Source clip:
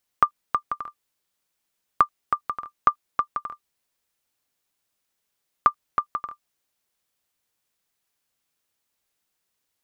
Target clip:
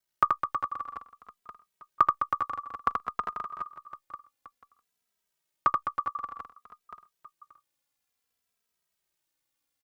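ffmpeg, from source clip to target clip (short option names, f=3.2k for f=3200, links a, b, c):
-filter_complex "[0:a]aeval=exprs='val(0)*sin(2*PI*30*n/s)':c=same,asplit=2[a][b];[b]aecho=0:1:80|208|412.8|740.5|1265:0.631|0.398|0.251|0.158|0.1[c];[a][c]amix=inputs=2:normalize=0,asplit=2[d][e];[e]adelay=2.7,afreqshift=-0.56[f];[d][f]amix=inputs=2:normalize=1"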